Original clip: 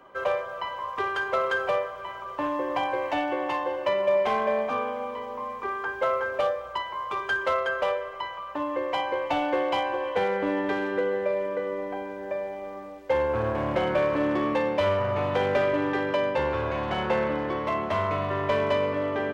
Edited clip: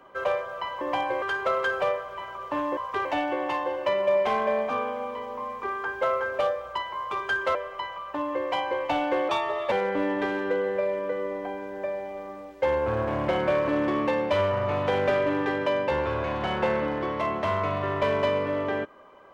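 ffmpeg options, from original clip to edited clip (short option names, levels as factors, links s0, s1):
-filter_complex "[0:a]asplit=8[s0][s1][s2][s3][s4][s5][s6][s7];[s0]atrim=end=0.812[s8];[s1]atrim=start=2.638:end=3.052[s9];[s2]atrim=start=1.088:end=2.642[s10];[s3]atrim=start=0.808:end=1.092[s11];[s4]atrim=start=3.048:end=7.552[s12];[s5]atrim=start=7.958:end=9.704[s13];[s6]atrim=start=9.7:end=10.19,asetpts=PTS-STARTPTS,asetrate=50715,aresample=44100,atrim=end_sample=18790,asetpts=PTS-STARTPTS[s14];[s7]atrim=start=10.186[s15];[s8][s9]acrossfade=d=0.004:c1=hsin:c2=hsin[s16];[s16][s10]acrossfade=d=0.004:c1=hsin:c2=hsin[s17];[s17][s11]acrossfade=d=0.004:c1=hsin:c2=hsin[s18];[s18][s12]acrossfade=d=0.004:c1=hsin:c2=hsin[s19];[s19][s13]acrossfade=d=0.004:c1=hsin:c2=hsin[s20];[s20][s14]acrossfade=d=0.004:c1=hsin:c2=hsin[s21];[s21][s15]acrossfade=d=0.004:c1=hsin:c2=hsin"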